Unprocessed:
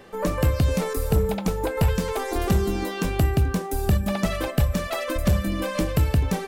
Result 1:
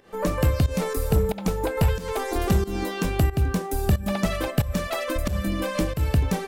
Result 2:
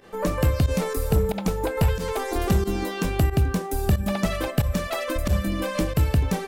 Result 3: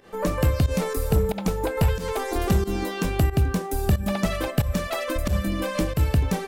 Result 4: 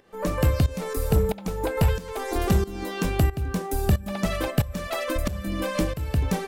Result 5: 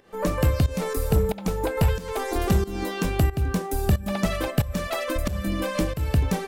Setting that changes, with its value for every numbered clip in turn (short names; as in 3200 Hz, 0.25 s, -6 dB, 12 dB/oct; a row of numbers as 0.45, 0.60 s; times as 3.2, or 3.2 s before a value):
pump, release: 196, 66, 106, 524, 298 ms